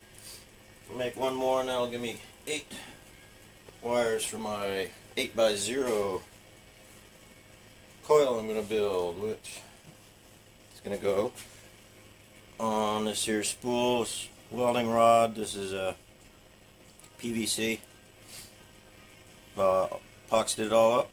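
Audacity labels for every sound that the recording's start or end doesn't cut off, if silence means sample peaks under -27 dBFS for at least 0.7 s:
0.990000	2.570000	sound
3.860000	6.170000	sound
8.100000	9.320000	sound
10.870000	11.270000	sound
12.600000	15.910000	sound
17.240000	17.840000	sound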